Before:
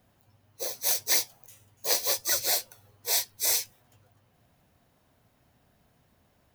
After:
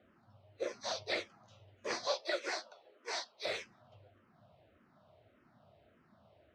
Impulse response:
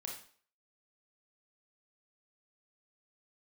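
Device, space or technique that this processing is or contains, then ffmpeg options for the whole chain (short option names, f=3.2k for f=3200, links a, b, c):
barber-pole phaser into a guitar amplifier: -filter_complex "[0:a]asplit=2[a][b];[b]afreqshift=-1.7[c];[a][c]amix=inputs=2:normalize=1,asoftclip=type=tanh:threshold=-24.5dB,highpass=77,equalizer=f=100:t=q:w=4:g=3,equalizer=f=210:t=q:w=4:g=5,equalizer=f=350:t=q:w=4:g=6,equalizer=f=620:t=q:w=4:g=10,equalizer=f=1.3k:t=q:w=4:g=8,lowpass=f=4.2k:w=0.5412,lowpass=f=4.2k:w=1.3066,asettb=1/sr,asplit=3[d][e][f];[d]atrim=end=2.074[g];[e]atrim=start=2.07:end=3.46,asetpts=PTS-STARTPTS,afade=t=in:d=0.004:c=qsin,afade=t=out:st=1.386:d=0.004:c=qsin,highpass=f=290:w=0.5412,highpass=f=290:w=1.3066[h];[f]atrim=start=3.456[i];[g][h]acrossfade=d=0.004:c1=hsin:c2=qsin[j];[j][i]acrossfade=d=0.004:c1=qsin:c2=hsin"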